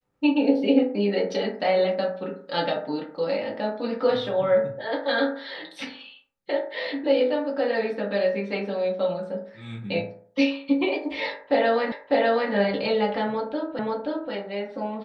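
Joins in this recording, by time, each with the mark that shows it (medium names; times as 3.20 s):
11.92 s: repeat of the last 0.6 s
13.79 s: repeat of the last 0.53 s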